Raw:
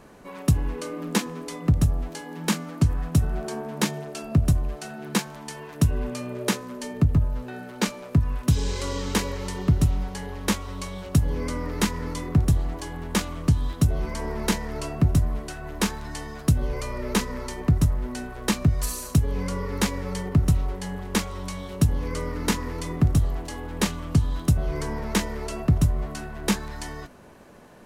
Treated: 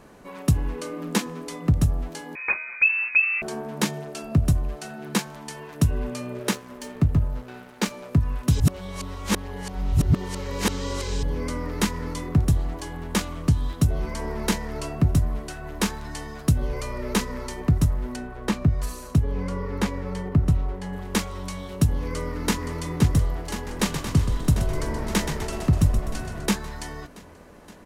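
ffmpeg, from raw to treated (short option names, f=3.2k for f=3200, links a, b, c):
-filter_complex "[0:a]asettb=1/sr,asplit=3[a][b][c];[a]atrim=end=2.354[d];[b]atrim=start=2.35:end=3.42,asetpts=PTS-STARTPTS,afade=t=in:d=0.004:c=qsin,afade=t=out:st=1.066:d=0.004:c=qsin,lowpass=f=2.3k:t=q:w=0.5098,lowpass=f=2.3k:t=q:w=0.6013,lowpass=f=2.3k:t=q:w=0.9,lowpass=f=2.3k:t=q:w=2.563,afreqshift=-2700[e];[c]atrim=start=3.416[f];[d][e]acrossfade=d=0.004:c1=hsin:c2=qsin[g];[g][f]acrossfade=d=0.004:c1=qsin:c2=hsin,asettb=1/sr,asplit=3[h][i][j];[h]atrim=end=6.394[k];[i]atrim=start=6.39:end=7.91,asetpts=PTS-STARTPTS,afade=t=in:d=0.004:c=qsin,afade=t=out:st=1.516:d=0.004:c=qsin,aeval=exprs='sgn(val(0))*max(abs(val(0))-0.00891,0)':c=same[l];[j]atrim=start=7.906[m];[k][l]acrossfade=d=0.004:c1=hsin:c2=qsin[n];[n][m]acrossfade=d=0.004:c1=qsin:c2=hsin,asettb=1/sr,asplit=3[o][p][q];[o]atrim=end=18.164[r];[p]atrim=start=18.16:end=20.93,asetpts=PTS-STARTPTS,afade=t=in:d=0.004:c=qsin,afade=t=out:st=2.766:d=0.004:c=qsin,highshelf=f=3.4k:g=-11[s];[q]atrim=start=20.926[t];[r][s]acrossfade=d=0.004:c1=hsin:c2=qsin[u];[u][t]acrossfade=d=0.004:c1=qsin:c2=hsin,asplit=2[v][w];[w]afade=t=in:st=22.06:d=0.01,afade=t=out:st=22.67:d=0.01,aecho=0:1:520|1040|1560|2080|2600|3120|3640|4160|4680|5200|5720|6240:0.446684|0.357347|0.285877|0.228702|0.182962|0.146369|0.117095|0.0936763|0.0749411|0.0599529|0.0479623|0.0383698[x];[v][x]amix=inputs=2:normalize=0,asettb=1/sr,asplit=3[y][z][aa];[y]atrim=end=23.544[ab];[z]atrim=start=23.54:end=26.46,asetpts=PTS-STARTPTS,afade=t=in:d=0.004:c=qsin,afade=t=out:st=2.916:d=0.004:c=qsin,asplit=8[ac][ad][ae][af][ag][ah][ai][aj];[ad]adelay=126,afreqshift=-49,volume=-7.5dB[ak];[ae]adelay=252,afreqshift=-98,volume=-12.9dB[al];[af]adelay=378,afreqshift=-147,volume=-18.2dB[am];[ag]adelay=504,afreqshift=-196,volume=-23.6dB[an];[ah]adelay=630,afreqshift=-245,volume=-28.9dB[ao];[ai]adelay=756,afreqshift=-294,volume=-34.3dB[ap];[aj]adelay=882,afreqshift=-343,volume=-39.6dB[aq];[ac][ak][al][am][an][ao][ap][aq]amix=inputs=8:normalize=0,atrim=end_sample=128772[ar];[aa]atrim=start=26.456[as];[ab][ar]acrossfade=d=0.004:c1=hsin:c2=qsin[at];[at][as]acrossfade=d=0.004:c1=qsin:c2=hsin,asplit=3[au][av][aw];[au]atrim=end=8.602[ax];[av]atrim=start=8.598:end=11.232,asetpts=PTS-STARTPTS,areverse[ay];[aw]atrim=start=11.228[az];[ax][ay]acrossfade=d=0.004:c1=hsin:c2=hsin[ba];[ba][az]acrossfade=d=0.004:c1=hsin:c2=hsin"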